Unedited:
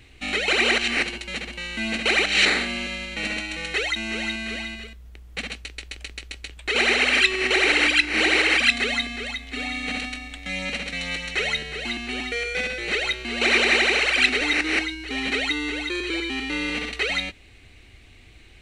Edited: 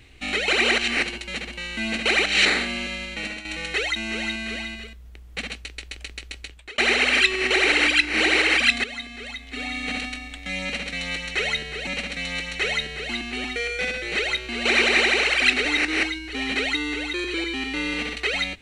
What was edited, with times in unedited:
3.1–3.45 fade out, to -10 dB
6.41–6.78 fade out linear
8.84–9.82 fade in, from -12 dB
10.63–11.87 loop, 2 plays

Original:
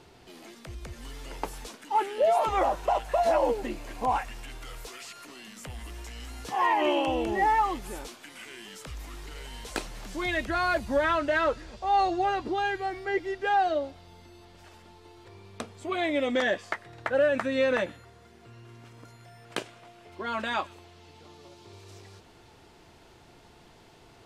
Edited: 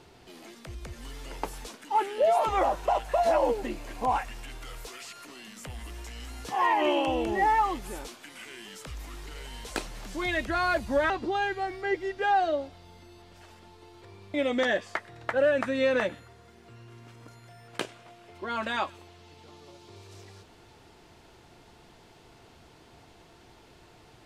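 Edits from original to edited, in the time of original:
11.1–12.33 cut
15.57–16.11 cut

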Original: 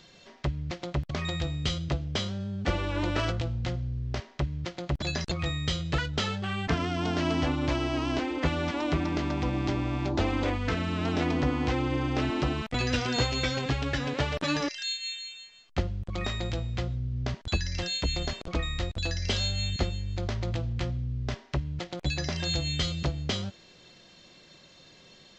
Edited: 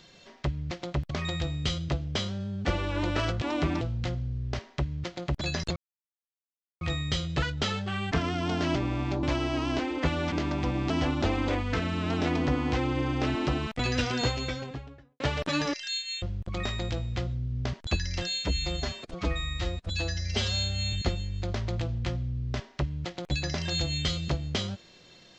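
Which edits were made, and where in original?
5.37 insert silence 1.05 s
7.31–7.63 swap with 9.69–10.17
8.72–9.11 move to 3.42
13.03–14.15 studio fade out
15.17–15.83 cut
17.94–19.67 stretch 1.5×

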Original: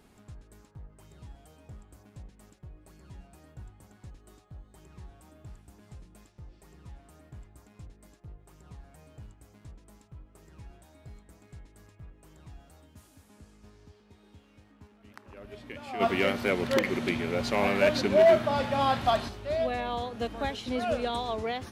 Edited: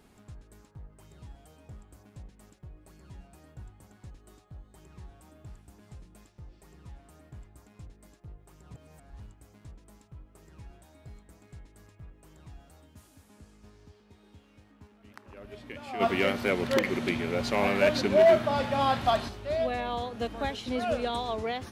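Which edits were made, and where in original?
8.74–9.2 reverse

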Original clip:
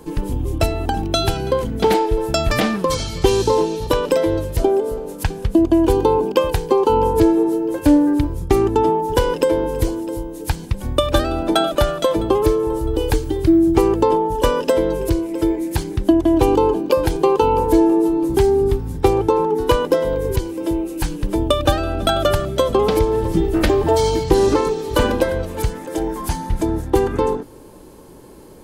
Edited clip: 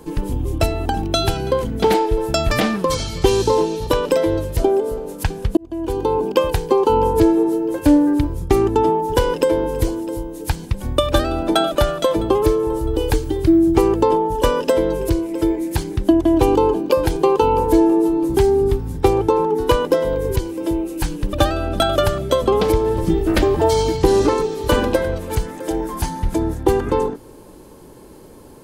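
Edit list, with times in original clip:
5.57–6.34 fade in
21.33–21.6 cut

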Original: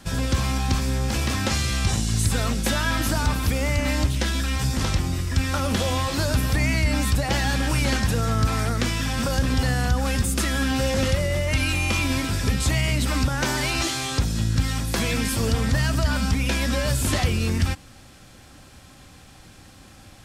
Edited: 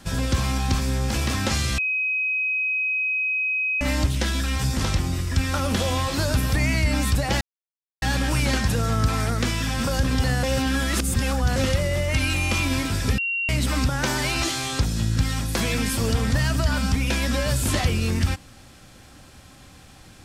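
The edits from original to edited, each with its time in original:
1.78–3.81 bleep 2530 Hz -21 dBFS
7.41 insert silence 0.61 s
9.82–10.95 reverse
12.57–12.88 bleep 2750 Hz -22.5 dBFS

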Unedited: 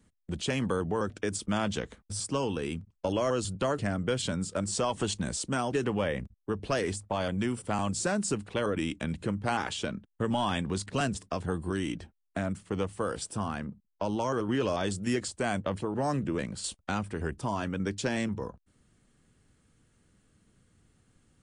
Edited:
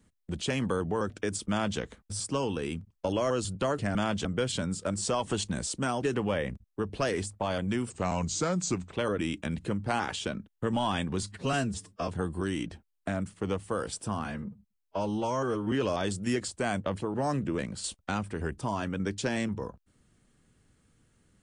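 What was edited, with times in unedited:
1.49–1.79 copy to 3.95
7.6–8.51 speed 88%
10.8–11.37 stretch 1.5×
13.54–14.52 stretch 1.5×

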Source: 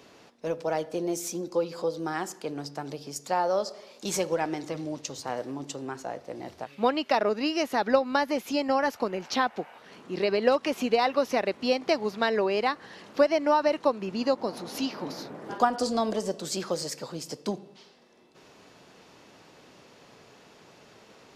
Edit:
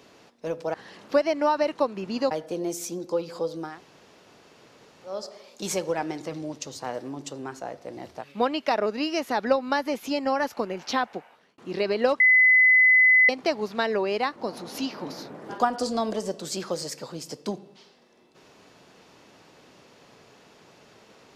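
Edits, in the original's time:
2.12–3.58 room tone, crossfade 0.24 s
9.49–10.01 fade out
10.63–11.72 bleep 2020 Hz -13.5 dBFS
12.79–14.36 move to 0.74

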